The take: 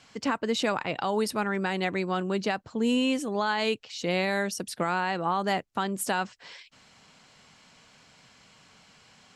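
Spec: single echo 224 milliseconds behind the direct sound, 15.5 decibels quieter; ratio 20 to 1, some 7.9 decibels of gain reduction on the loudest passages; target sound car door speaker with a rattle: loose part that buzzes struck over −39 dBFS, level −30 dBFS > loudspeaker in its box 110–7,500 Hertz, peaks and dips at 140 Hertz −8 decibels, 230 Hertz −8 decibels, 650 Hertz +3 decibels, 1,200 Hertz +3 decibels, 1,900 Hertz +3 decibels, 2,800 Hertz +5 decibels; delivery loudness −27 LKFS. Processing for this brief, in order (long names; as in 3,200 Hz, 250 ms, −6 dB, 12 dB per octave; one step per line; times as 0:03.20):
downward compressor 20 to 1, threshold −29 dBFS
single-tap delay 224 ms −15.5 dB
loose part that buzzes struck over −39 dBFS, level −30 dBFS
loudspeaker in its box 110–7,500 Hz, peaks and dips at 140 Hz −8 dB, 230 Hz −8 dB, 650 Hz +3 dB, 1,200 Hz +3 dB, 1,900 Hz +3 dB, 2,800 Hz +5 dB
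level +6.5 dB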